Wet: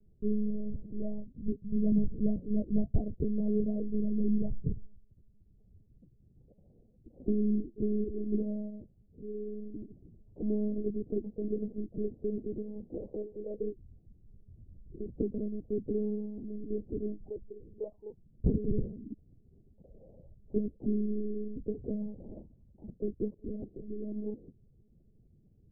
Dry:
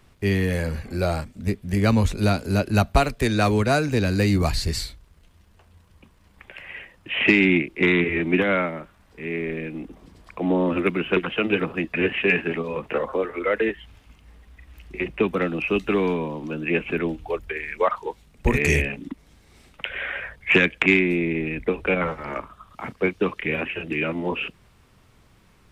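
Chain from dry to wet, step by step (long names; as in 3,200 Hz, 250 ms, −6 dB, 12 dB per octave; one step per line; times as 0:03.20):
Gaussian smoothing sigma 22 samples
one-pitch LPC vocoder at 8 kHz 210 Hz
level −5 dB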